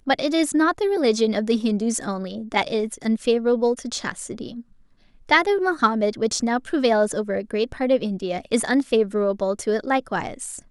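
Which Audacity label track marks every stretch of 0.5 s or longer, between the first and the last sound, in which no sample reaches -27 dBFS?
4.500000	5.290000	silence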